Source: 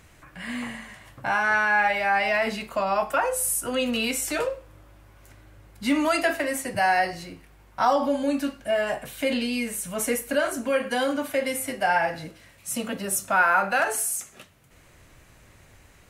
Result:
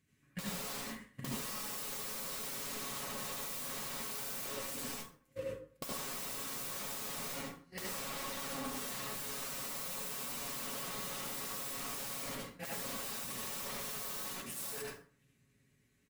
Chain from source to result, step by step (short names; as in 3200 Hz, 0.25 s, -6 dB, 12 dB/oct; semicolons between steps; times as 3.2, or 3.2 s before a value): reverse delay 0.494 s, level -12 dB; gate -40 dBFS, range -36 dB; HPF 56 Hz 12 dB/oct; band shelf 810 Hz -13 dB; limiter -23.5 dBFS, peak gain reduction 10.5 dB; wrapped overs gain 37 dB; comb 7.2 ms, depth 50%; compressor 16:1, threshold -56 dBFS, peak gain reduction 19 dB; high shelf 12000 Hz +4 dB; small resonant body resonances 200/510/1100 Hz, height 9 dB, ringing for 30 ms; reverb RT60 0.45 s, pre-delay 62 ms, DRR -3.5 dB; gain +10.5 dB